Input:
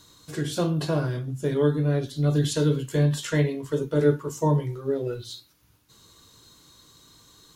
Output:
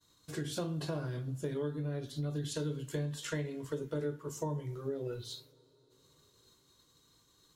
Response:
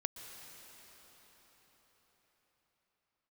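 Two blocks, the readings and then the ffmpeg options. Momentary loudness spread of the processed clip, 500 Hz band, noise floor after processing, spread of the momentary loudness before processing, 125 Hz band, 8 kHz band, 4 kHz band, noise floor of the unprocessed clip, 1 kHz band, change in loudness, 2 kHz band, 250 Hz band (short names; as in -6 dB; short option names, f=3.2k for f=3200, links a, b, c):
4 LU, -13.0 dB, -69 dBFS, 9 LU, -13.0 dB, -9.0 dB, -9.5 dB, -60 dBFS, -13.0 dB, -13.0 dB, -11.0 dB, -13.0 dB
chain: -filter_complex "[0:a]acompressor=threshold=-28dB:ratio=5,agate=range=-33dB:threshold=-47dB:ratio=3:detection=peak,asplit=2[a][b];[1:a]atrim=start_sample=2205[c];[b][c]afir=irnorm=-1:irlink=0,volume=-17.5dB[d];[a][d]amix=inputs=2:normalize=0,volume=-6.5dB"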